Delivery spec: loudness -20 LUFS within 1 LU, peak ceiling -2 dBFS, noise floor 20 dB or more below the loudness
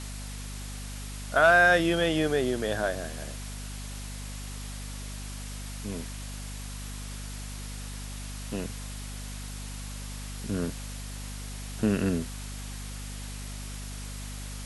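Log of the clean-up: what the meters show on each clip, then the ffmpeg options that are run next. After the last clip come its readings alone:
hum 50 Hz; highest harmonic 250 Hz; hum level -36 dBFS; noise floor -38 dBFS; noise floor target -51 dBFS; loudness -31.0 LUFS; peak level -10.0 dBFS; loudness target -20.0 LUFS
-> -af "bandreject=f=50:t=h:w=6,bandreject=f=100:t=h:w=6,bandreject=f=150:t=h:w=6,bandreject=f=200:t=h:w=6,bandreject=f=250:t=h:w=6"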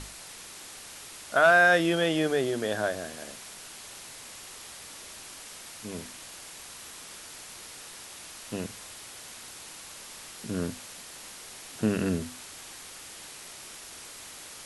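hum not found; noise floor -45 dBFS; noise floor target -47 dBFS
-> -af "afftdn=nr=6:nf=-45"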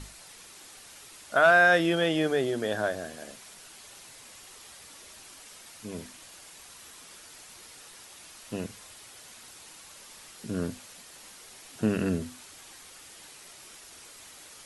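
noise floor -50 dBFS; loudness -26.5 LUFS; peak level -10.5 dBFS; loudness target -20.0 LUFS
-> -af "volume=2.11"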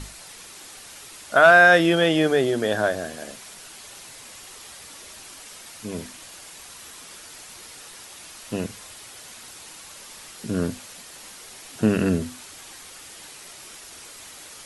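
loudness -20.0 LUFS; peak level -4.0 dBFS; noise floor -43 dBFS

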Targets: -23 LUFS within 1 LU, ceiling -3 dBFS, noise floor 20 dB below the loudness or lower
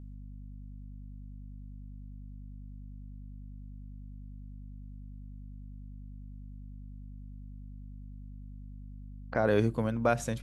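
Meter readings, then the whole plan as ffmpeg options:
hum 50 Hz; highest harmonic 250 Hz; hum level -42 dBFS; loudness -29.0 LUFS; peak level -12.5 dBFS; loudness target -23.0 LUFS
-> -af "bandreject=f=50:t=h:w=6,bandreject=f=100:t=h:w=6,bandreject=f=150:t=h:w=6,bandreject=f=200:t=h:w=6,bandreject=f=250:t=h:w=6"
-af "volume=2"

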